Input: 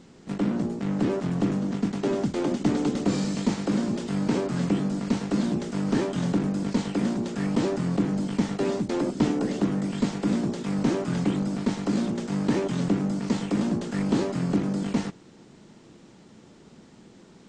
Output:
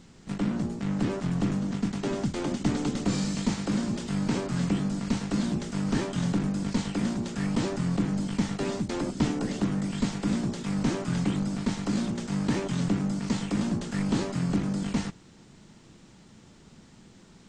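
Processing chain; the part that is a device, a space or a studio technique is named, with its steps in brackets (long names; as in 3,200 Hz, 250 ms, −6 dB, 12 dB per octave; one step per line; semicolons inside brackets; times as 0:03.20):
smiley-face EQ (low-shelf EQ 90 Hz +8.5 dB; parametric band 400 Hz −6.5 dB 2 octaves; high-shelf EQ 7,900 Hz +4 dB)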